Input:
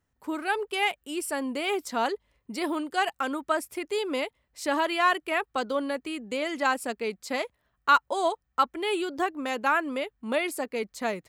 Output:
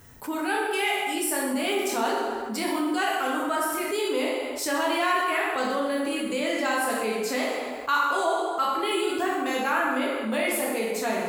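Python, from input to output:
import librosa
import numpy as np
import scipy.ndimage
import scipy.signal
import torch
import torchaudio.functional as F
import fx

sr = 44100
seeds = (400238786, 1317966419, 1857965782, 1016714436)

y = fx.high_shelf(x, sr, hz=10000.0, db=11.5)
y = fx.rev_plate(y, sr, seeds[0], rt60_s=1.2, hf_ratio=0.75, predelay_ms=0, drr_db=-4.5)
y = fx.env_flatten(y, sr, amount_pct=50)
y = y * 10.0 ** (-8.0 / 20.0)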